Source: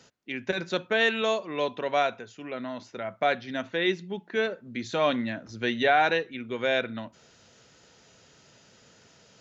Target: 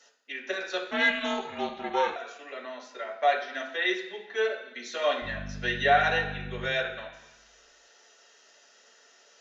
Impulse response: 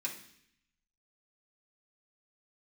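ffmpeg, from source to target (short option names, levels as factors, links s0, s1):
-filter_complex "[0:a]highpass=f=390:w=0.5412,highpass=f=390:w=1.3066,asettb=1/sr,asplit=3[s0][s1][s2];[s0]atrim=end=5.224[s3];[s1]atrim=start=5.22:end=6.66,asetpts=PTS-STARTPTS,afade=t=in:d=0.004:c=qsin,afade=t=out:st=1.436:d=0.004:c=qsin,aeval=exprs='val(0)+0.0178*(sin(2*PI*50*n/s)+sin(2*PI*2*50*n/s)/2+sin(2*PI*3*50*n/s)/3+sin(2*PI*4*50*n/s)/4+sin(2*PI*5*50*n/s)/5)':c=same[s4];[s2]atrim=start=6.656[s5];[s3][s4]acrossfade=d=0.004:c1=hsin:c2=qsin[s6];[s6][s5]acrossfade=d=0.004:c1=qsin:c2=hsin[s7];[1:a]atrim=start_sample=2205,asetrate=32634,aresample=44100[s8];[s7][s8]afir=irnorm=-1:irlink=0,asettb=1/sr,asplit=3[s9][s10][s11];[s9]atrim=end=0.914[s12];[s10]atrim=start=0.91:end=2.16,asetpts=PTS-STARTPTS,afade=t=in:d=0.004:c=qsin,afade=t=out:st=1.246:d=0.004:c=qsin,aeval=exprs='val(0)*sin(2*PI*200*n/s)':c=same[s13];[s11]atrim=start=2.156[s14];[s12][s13]acrossfade=d=0.004:c1=hsin:c2=qsin[s15];[s15][s14]acrossfade=d=0.004:c1=qsin:c2=hsin,volume=0.668"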